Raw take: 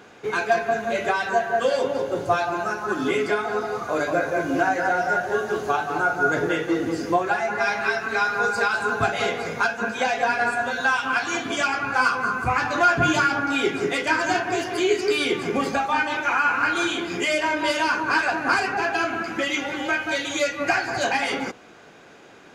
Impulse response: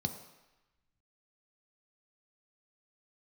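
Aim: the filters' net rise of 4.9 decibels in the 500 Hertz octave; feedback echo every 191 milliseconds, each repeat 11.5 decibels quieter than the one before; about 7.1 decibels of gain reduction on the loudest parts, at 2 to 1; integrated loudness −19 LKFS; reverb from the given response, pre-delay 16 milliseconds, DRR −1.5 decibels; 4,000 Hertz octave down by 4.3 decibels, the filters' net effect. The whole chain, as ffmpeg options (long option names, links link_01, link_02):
-filter_complex "[0:a]equalizer=frequency=500:width_type=o:gain=6.5,equalizer=frequency=4000:width_type=o:gain=-6,acompressor=threshold=-25dB:ratio=2,aecho=1:1:191|382|573:0.266|0.0718|0.0194,asplit=2[link_01][link_02];[1:a]atrim=start_sample=2205,adelay=16[link_03];[link_02][link_03]afir=irnorm=-1:irlink=0,volume=-0.5dB[link_04];[link_01][link_04]amix=inputs=2:normalize=0,volume=0.5dB"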